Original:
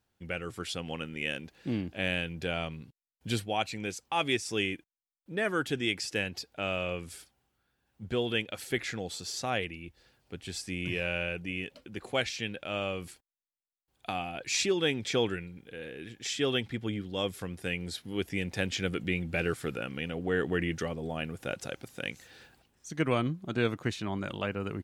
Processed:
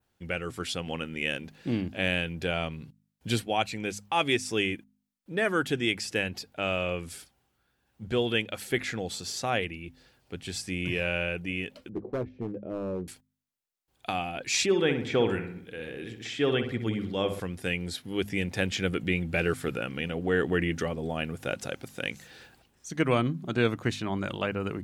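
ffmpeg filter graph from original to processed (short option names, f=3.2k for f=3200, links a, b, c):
-filter_complex "[0:a]asettb=1/sr,asplit=3[a][b][c];[a]atrim=end=11.894[d];[b]atrim=start=11.89:end=13.08,asetpts=PTS-STARTPTS,afade=t=in:d=0.004:c=qsin,afade=t=out:st=1.186:d=0.004:c=qsin,lowpass=f=390:t=q:w=1.7,volume=29.5dB,asoftclip=hard,volume=-29.5dB,asplit=2[e][f];[f]adelay=16,volume=-11dB[g];[e][g]amix=inputs=2:normalize=0,atrim=end_sample=52479[h];[c]atrim=start=13.076[i];[d][h]acrossfade=d=0.004:c1=hsin:c2=qsin[j];[j][i]acrossfade=d=0.004:c1=qsin:c2=hsin,asettb=1/sr,asplit=3[k][l][m];[k]atrim=end=14.664[n];[l]atrim=start=14.66:end=17.4,asetpts=PTS-STARTPTS,afade=t=in:d=0.004:c=qsin,afade=t=out:st=2.736:d=0.004:c=qsin,acrossover=split=3000[o][p];[p]acompressor=threshold=-49dB:ratio=4:attack=1:release=60[q];[o][q]amix=inputs=2:normalize=0,asplit=2[r][s];[s]adelay=62,lowpass=f=2.4k:p=1,volume=-8dB,asplit=2[t][u];[u]adelay=62,lowpass=f=2.4k:p=1,volume=0.54,asplit=2[v][w];[w]adelay=62,lowpass=f=2.4k:p=1,volume=0.54,asplit=2[x][y];[y]adelay=62,lowpass=f=2.4k:p=1,volume=0.54,asplit=2[z][aa];[aa]adelay=62,lowpass=f=2.4k:p=1,volume=0.54,asplit=2[ab][ac];[ac]adelay=62,lowpass=f=2.4k:p=1,volume=0.54[ad];[r][t][v][x][z][ab][ad]amix=inputs=7:normalize=0,atrim=end_sample=120834[ae];[m]atrim=start=17.396[af];[n][ae]acrossfade=d=0.004:c1=hsin:c2=qsin[ag];[ag][af]acrossfade=d=0.004:c1=qsin:c2=hsin,bandreject=f=51.1:t=h:w=4,bandreject=f=102.2:t=h:w=4,bandreject=f=153.3:t=h:w=4,bandreject=f=204.4:t=h:w=4,bandreject=f=255.5:t=h:w=4,adynamicequalizer=threshold=0.00398:dfrequency=5200:dqfactor=0.9:tfrequency=5200:tqfactor=0.9:attack=5:release=100:ratio=0.375:range=2:mode=cutabove:tftype=bell,volume=3.5dB"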